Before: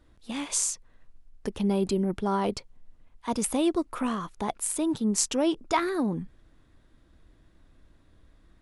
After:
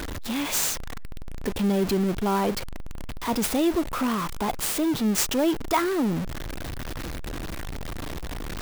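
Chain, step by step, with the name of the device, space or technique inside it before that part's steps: early CD player with a faulty converter (zero-crossing step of -26.5 dBFS; clock jitter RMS 0.022 ms)

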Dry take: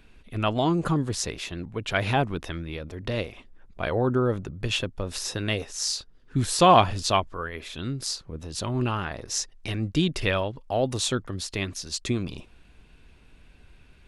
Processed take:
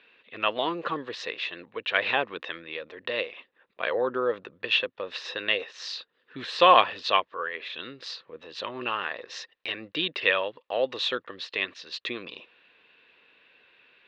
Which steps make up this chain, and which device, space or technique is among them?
phone earpiece (speaker cabinet 440–4100 Hz, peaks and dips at 500 Hz +8 dB, 720 Hz -3 dB, 1100 Hz +5 dB, 1800 Hz +9 dB, 2700 Hz +8 dB, 3800 Hz +7 dB); gain -3 dB

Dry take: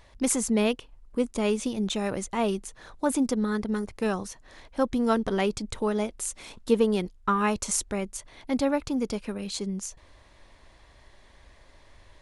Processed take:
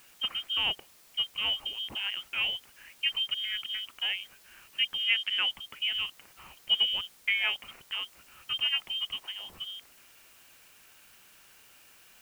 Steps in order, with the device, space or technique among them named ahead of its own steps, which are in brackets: scrambled radio voice (BPF 310–2700 Hz; inverted band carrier 3400 Hz; white noise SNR 24 dB); 5.04–5.5 weighting filter A; gain -2.5 dB

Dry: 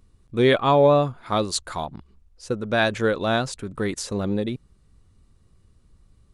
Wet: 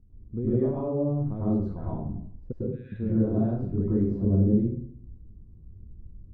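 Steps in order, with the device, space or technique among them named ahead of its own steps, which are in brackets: 2.52–2.92 steep high-pass 1800 Hz 48 dB/oct; television next door (compressor 6:1, threshold -25 dBFS, peak gain reduction 12.5 dB; LPF 260 Hz 12 dB/oct; reverb RT60 0.65 s, pre-delay 99 ms, DRR -9 dB)

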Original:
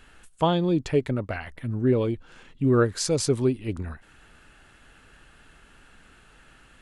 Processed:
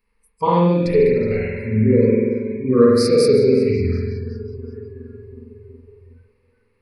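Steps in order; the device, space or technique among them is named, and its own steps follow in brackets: bell 300 Hz +3 dB 0.88 oct; dub delay into a spring reverb (darkening echo 0.369 s, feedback 75%, low-pass 4900 Hz, level -14.5 dB; spring tank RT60 1.7 s, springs 46 ms, chirp 30 ms, DRR -5.5 dB); spectral noise reduction 22 dB; ripple EQ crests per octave 0.89, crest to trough 17 dB; gain -2.5 dB

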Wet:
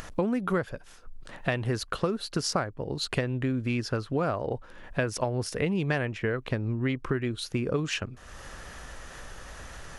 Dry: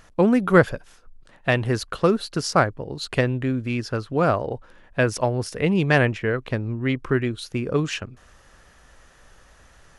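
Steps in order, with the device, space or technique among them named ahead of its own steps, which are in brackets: upward and downward compression (upward compressor, threshold -32 dBFS; compressor 8:1, threshold -24 dBFS, peak gain reduction 15.5 dB)

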